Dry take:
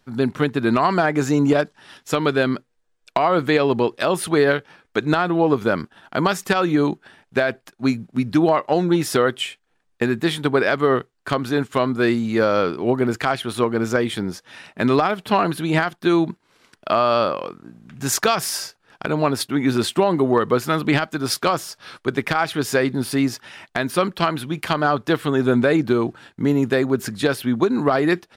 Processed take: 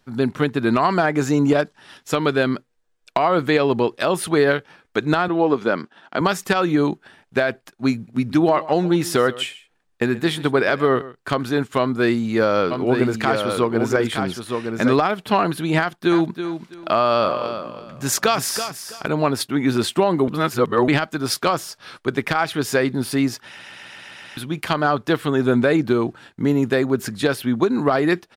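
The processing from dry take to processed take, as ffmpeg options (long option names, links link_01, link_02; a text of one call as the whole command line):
ffmpeg -i in.wav -filter_complex "[0:a]asettb=1/sr,asplit=3[link_01][link_02][link_03];[link_01]atrim=end=5.284[link_04];[link_02]atrim=start=5.28:end=6.21,asetpts=PTS-STARTPTS,afade=type=in:duration=0.004:curve=qsin,afade=type=out:start_time=0.926:duration=0.004:curve=qsin,highpass=200,lowpass=6400[link_05];[link_03]atrim=start=6.206[link_06];[link_04][link_05]acrossfade=duration=0.004:curve1=hsin:curve2=qsin[link_07];[link_07][link_06]acrossfade=duration=0.004:curve1=qsin:curve2=hsin,asettb=1/sr,asplit=3[link_08][link_09][link_10];[link_08]atrim=end=7.944[link_11];[link_09]atrim=start=7.94:end=11.43,asetpts=PTS-STARTPTS,afade=type=in:duration=0.004:curve=qsin,afade=type=out:start_time=3.486:duration=0.004:curve=qsin,aecho=1:1:133:0.126,atrim=end_sample=153909[link_12];[link_10]atrim=start=11.426[link_13];[link_11][link_12]acrossfade=duration=0.004:curve1=hsin:curve2=qsin[link_14];[link_14][link_13]acrossfade=duration=0.004:curve1=qsin:curve2=hsin,asplit=3[link_15][link_16][link_17];[link_15]afade=type=out:start_time=12.7:duration=0.02[link_18];[link_16]aecho=1:1:916:0.531,afade=type=in:start_time=12.7:duration=0.02,afade=type=out:start_time=14.92:duration=0.02[link_19];[link_17]afade=type=in:start_time=14.92:duration=0.02[link_20];[link_18][link_19][link_20]amix=inputs=3:normalize=0,asettb=1/sr,asplit=3[link_21][link_22][link_23];[link_21]atrim=end=15.794[link_24];[link_22]atrim=start=15.79:end=19.08,asetpts=PTS-STARTPTS,afade=type=in:duration=0.004:curve=qsin,afade=type=out:start_time=3.286:duration=0.004:curve=qsin,aecho=1:1:328|656|984:0.335|0.0737|0.0162,atrim=end_sample=145089[link_25];[link_23]atrim=start=19.076[link_26];[link_24][link_25]acrossfade=duration=0.004:curve1=hsin:curve2=qsin[link_27];[link_27][link_26]acrossfade=duration=0.004:curve1=qsin:curve2=hsin,asplit=10[link_28][link_29][link_30][link_31][link_32][link_33][link_34][link_35][link_36][link_37];[link_28]atrim=end=20.282[link_38];[link_29]atrim=start=20.278:end=20.882,asetpts=PTS-STARTPTS,areverse[link_39];[link_30]atrim=start=20.878:end=23.592[link_40];[link_31]atrim=start=23.458:end=23.592[link_41];[link_32]atrim=start=23.458:end=23.592[link_42];[link_33]atrim=start=23.458:end=23.592[link_43];[link_34]atrim=start=23.458:end=23.592[link_44];[link_35]atrim=start=23.458:end=23.592[link_45];[link_36]atrim=start=23.458:end=23.592[link_46];[link_37]atrim=start=24.368[link_47];[link_38][link_39]acrossfade=duration=0.004:curve1=hsin:curve2=hsin[link_48];[link_48][link_40]acrossfade=duration=0.004:curve1=hsin:curve2=hsin[link_49];[link_49][link_41]acrossfade=duration=0.004:curve1=hsin:curve2=hsin[link_50];[link_50][link_42]acrossfade=duration=0.004:curve1=hsin:curve2=hsin[link_51];[link_51][link_43]acrossfade=duration=0.004:curve1=hsin:curve2=hsin[link_52];[link_52][link_44]acrossfade=duration=0.004:curve1=hsin:curve2=hsin[link_53];[link_53][link_45]acrossfade=duration=0.004:curve1=hsin:curve2=hsin[link_54];[link_54][link_46]acrossfade=duration=0.004:curve1=hsin:curve2=hsin[link_55];[link_55][link_47]acrossfade=duration=0.004:curve1=hsin:curve2=hsin" out.wav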